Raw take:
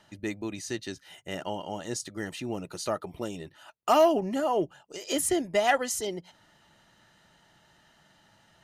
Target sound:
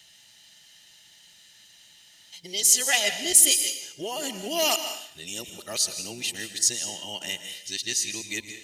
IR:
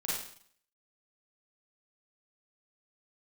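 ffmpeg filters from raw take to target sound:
-filter_complex "[0:a]areverse,asplit=2[a][b];[1:a]atrim=start_sample=2205,adelay=114[c];[b][c]afir=irnorm=-1:irlink=0,volume=-13.5dB[d];[a][d]amix=inputs=2:normalize=0,aexciter=amount=7.2:drive=6.9:freq=2k,volume=-7.5dB"

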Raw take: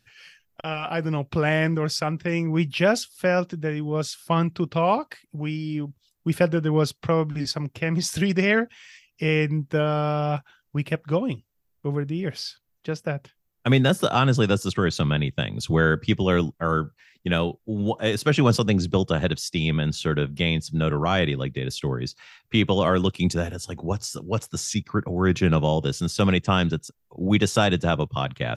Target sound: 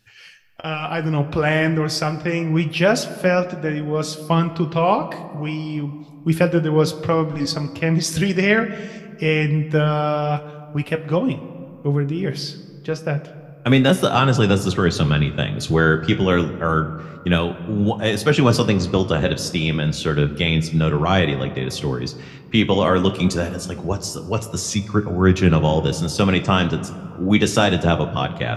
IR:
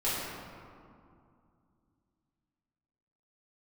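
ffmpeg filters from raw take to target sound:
-filter_complex "[0:a]flanger=delay=9.5:depth=6.5:regen=60:speed=0.28:shape=triangular,asplit=2[a][b];[1:a]atrim=start_sample=2205[c];[b][c]afir=irnorm=-1:irlink=0,volume=-20.5dB[d];[a][d]amix=inputs=2:normalize=0,volume=7.5dB"

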